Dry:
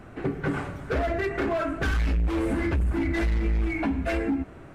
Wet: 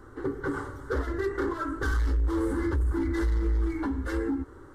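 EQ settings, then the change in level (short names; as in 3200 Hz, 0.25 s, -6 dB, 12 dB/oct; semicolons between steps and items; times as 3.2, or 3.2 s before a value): fixed phaser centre 670 Hz, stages 6; 0.0 dB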